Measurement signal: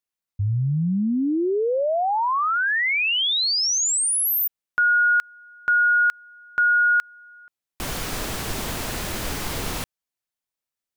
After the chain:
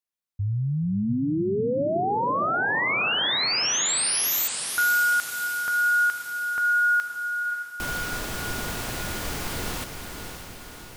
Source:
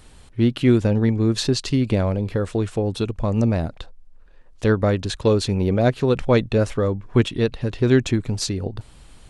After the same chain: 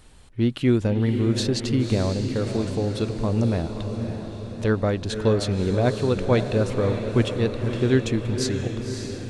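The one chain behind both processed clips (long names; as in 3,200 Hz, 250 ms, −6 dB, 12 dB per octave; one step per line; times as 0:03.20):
feedback delay with all-pass diffusion 562 ms, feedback 58%, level −7 dB
level −3.5 dB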